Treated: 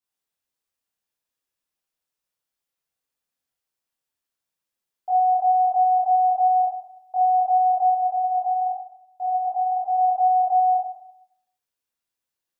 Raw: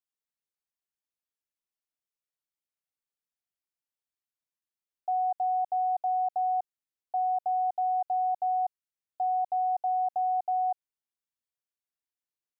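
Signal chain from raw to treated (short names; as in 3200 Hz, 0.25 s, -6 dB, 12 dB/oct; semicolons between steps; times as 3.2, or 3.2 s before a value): 7.9–9.94 flange 1 Hz, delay 5.6 ms, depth 6.4 ms, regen -59%; reverb RT60 0.75 s, pre-delay 15 ms, DRR -7.5 dB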